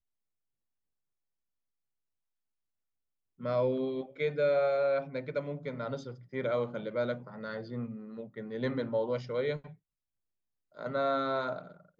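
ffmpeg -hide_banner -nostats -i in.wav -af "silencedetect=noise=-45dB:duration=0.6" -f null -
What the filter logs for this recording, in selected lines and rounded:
silence_start: 0.00
silence_end: 3.41 | silence_duration: 3.41
silence_start: 9.73
silence_end: 10.77 | silence_duration: 1.04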